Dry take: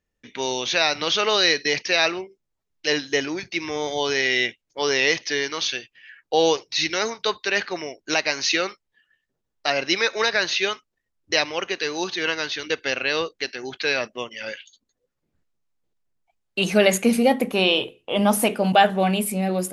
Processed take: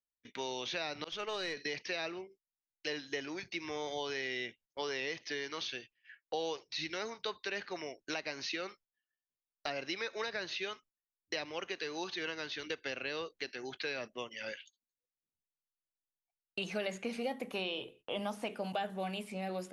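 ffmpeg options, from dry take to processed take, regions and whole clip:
ffmpeg -i in.wav -filter_complex "[0:a]asettb=1/sr,asplit=3[link_01][link_02][link_03];[link_01]atrim=end=1.044[link_04];[link_02]atrim=start=1.04:end=1.57,asetpts=PTS-STARTPTS,afade=type=in:duration=0.004:curve=qsin,afade=type=out:start_time=0.526:duration=0.004:curve=qsin,agate=range=-33dB:threshold=-17dB:ratio=3:release=100:detection=peak,equalizer=frequency=4300:width=1.5:gain=-4,aeval=exprs='(tanh(6.31*val(0)+0.2)-tanh(0.2))/6.31':channel_layout=same[link_05];[link_03]atrim=start=1.566[link_06];[link_04][link_05]acrossfade=duration=0.004:curve1=hsin:curve2=qsin[link_07];[link_07][link_06]acrossfade=duration=0.004:curve1=qsin:curve2=hsin,acrossover=split=7000[link_08][link_09];[link_09]acompressor=threshold=-51dB:ratio=4:attack=1:release=60[link_10];[link_08][link_10]amix=inputs=2:normalize=0,agate=range=-19dB:threshold=-45dB:ratio=16:detection=peak,acrossover=split=490|5600[link_11][link_12][link_13];[link_11]acompressor=threshold=-34dB:ratio=4[link_14];[link_12]acompressor=threshold=-29dB:ratio=4[link_15];[link_13]acompressor=threshold=-50dB:ratio=4[link_16];[link_14][link_15][link_16]amix=inputs=3:normalize=0,volume=-9dB" out.wav

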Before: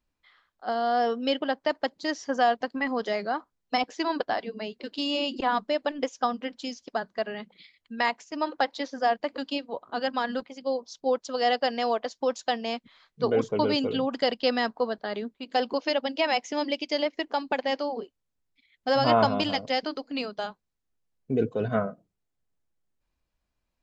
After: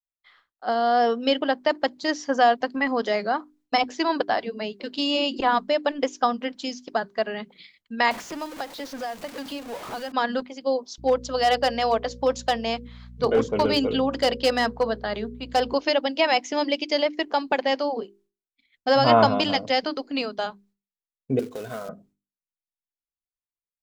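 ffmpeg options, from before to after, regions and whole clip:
ffmpeg -i in.wav -filter_complex "[0:a]asettb=1/sr,asplit=3[link_01][link_02][link_03];[link_01]atrim=end=8.114[link_04];[link_02]atrim=start=8.11:end=10.12,asetpts=PTS-STARTPTS,afade=type=in:duration=0.004:curve=qsin,afade=type=out:start_time=2.006:duration=0.004:curve=qsin,aeval=exprs='val(0)+0.5*0.0299*sgn(val(0))':channel_layout=same,acrossover=split=1300|3800[link_05][link_06][link_07];[link_05]acompressor=threshold=-38dB:ratio=4[link_08];[link_06]acompressor=threshold=-48dB:ratio=4[link_09];[link_07]acompressor=threshold=-51dB:ratio=4[link_10];[link_08][link_09][link_10]amix=inputs=3:normalize=0[link_11];[link_03]atrim=start=10.116[link_12];[link_04][link_11]acrossfade=duration=0.004:curve1=hsin:curve2=qsin[link_13];[link_13][link_12]acrossfade=duration=0.004:curve1=qsin:curve2=hsin,asettb=1/sr,asplit=3[link_14][link_15][link_16];[link_14]atrim=end=10.984[link_17];[link_15]atrim=start=10.98:end=15.74,asetpts=PTS-STARTPTS,afade=type=in:duration=0.004:curve=qsin,afade=type=out:start_time=4.756:duration=0.004:curve=qsin,bandreject=frequency=60:width_type=h:width=6,bandreject=frequency=120:width_type=h:width=6,bandreject=frequency=180:width_type=h:width=6,bandreject=frequency=240:width_type=h:width=6,bandreject=frequency=300:width_type=h:width=6,bandreject=frequency=360:width_type=h:width=6,bandreject=frequency=420:width_type=h:width=6,bandreject=frequency=480:width_type=h:width=6,bandreject=frequency=540:width_type=h:width=6,aeval=exprs='val(0)+0.00501*(sin(2*PI*60*n/s)+sin(2*PI*2*60*n/s)/2+sin(2*PI*3*60*n/s)/3+sin(2*PI*4*60*n/s)/4+sin(2*PI*5*60*n/s)/5)':channel_layout=same,asoftclip=type=hard:threshold=-17.5dB[link_18];[link_16]atrim=start=15.736[link_19];[link_17][link_18]acrossfade=duration=0.004:curve1=hsin:curve2=qsin[link_20];[link_20][link_19]acrossfade=duration=0.004:curve1=qsin:curve2=hsin,asettb=1/sr,asplit=3[link_21][link_22][link_23];[link_21]atrim=end=21.394[link_24];[link_22]atrim=start=21.39:end=21.89,asetpts=PTS-STARTPTS,afade=type=in:duration=0.004:curve=qsin,afade=type=out:start_time=0.496:duration=0.004:curve=qsin,bass=frequency=250:gain=-10,treble=frequency=4000:gain=8,acrusher=bits=3:mode=log:mix=0:aa=0.000001,acompressor=threshold=-34dB:ratio=6:attack=3.2:release=140:knee=1:detection=peak[link_25];[link_23]atrim=start=21.886[link_26];[link_24][link_25]acrossfade=duration=0.004:curve1=hsin:curve2=qsin[link_27];[link_27][link_26]acrossfade=duration=0.004:curve1=qsin:curve2=hsin,agate=range=-33dB:threshold=-59dB:ratio=3:detection=peak,bandreject=frequency=50:width_type=h:width=6,bandreject=frequency=100:width_type=h:width=6,bandreject=frequency=150:width_type=h:width=6,bandreject=frequency=200:width_type=h:width=6,bandreject=frequency=250:width_type=h:width=6,bandreject=frequency=300:width_type=h:width=6,bandreject=frequency=350:width_type=h:width=6,bandreject=frequency=400:width_type=h:width=6,volume=4.5dB" out.wav

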